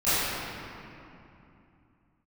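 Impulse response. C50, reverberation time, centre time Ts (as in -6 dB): -6.5 dB, 2.8 s, 0.203 s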